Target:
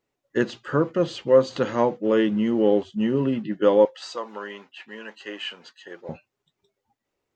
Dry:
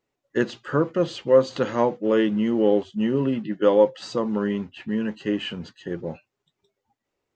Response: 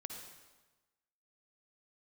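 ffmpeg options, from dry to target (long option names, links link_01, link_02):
-filter_complex "[0:a]asettb=1/sr,asplit=3[link_01][link_02][link_03];[link_01]atrim=end=3.854[link_04];[link_02]atrim=start=3.85:end=6.09,asetpts=PTS-STARTPTS,afade=type=in:duration=0.004:curve=qsin,afade=type=out:start_time=2.236:duration=0.004:curve=qsin,highpass=710[link_05];[link_03]atrim=start=6.086[link_06];[link_04][link_05]acrossfade=duration=0.004:curve1=hsin:curve2=qsin[link_07];[link_07][link_06]acrossfade=duration=0.004:curve1=qsin:curve2=hsin"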